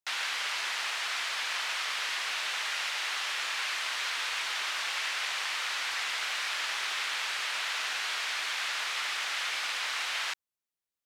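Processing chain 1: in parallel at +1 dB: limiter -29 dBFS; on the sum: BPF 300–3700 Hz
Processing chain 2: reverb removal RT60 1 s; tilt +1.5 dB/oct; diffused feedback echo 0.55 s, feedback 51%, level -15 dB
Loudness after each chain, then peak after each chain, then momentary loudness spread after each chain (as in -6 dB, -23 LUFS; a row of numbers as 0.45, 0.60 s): -28.0, -31.0 LUFS; -18.0, -19.0 dBFS; 0, 0 LU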